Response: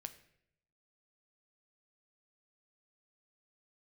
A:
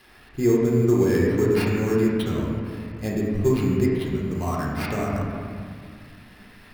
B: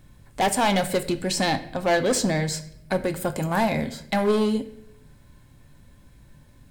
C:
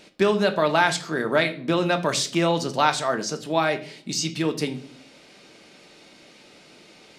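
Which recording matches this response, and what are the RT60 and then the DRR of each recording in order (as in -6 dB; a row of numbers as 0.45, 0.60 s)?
B; 2.1, 0.75, 0.50 s; -5.0, 9.0, 5.5 dB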